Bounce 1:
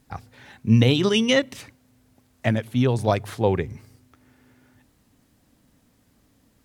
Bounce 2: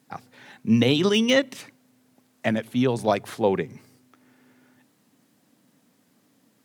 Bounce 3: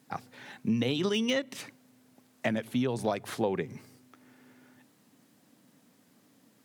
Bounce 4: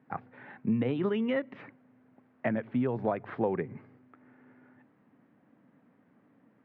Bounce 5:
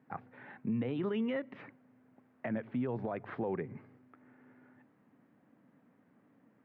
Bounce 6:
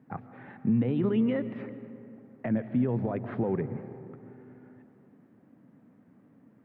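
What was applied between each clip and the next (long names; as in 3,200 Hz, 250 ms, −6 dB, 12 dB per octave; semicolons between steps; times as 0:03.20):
de-essing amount 50%; high-pass filter 150 Hz 24 dB per octave
downward compressor 5 to 1, threshold −26 dBFS, peak gain reduction 11 dB
low-pass filter 2,000 Hz 24 dB per octave
brickwall limiter −24.5 dBFS, peak gain reduction 9 dB; level −2.5 dB
low-shelf EQ 430 Hz +11 dB; on a send at −12 dB: convolution reverb RT60 2.9 s, pre-delay 90 ms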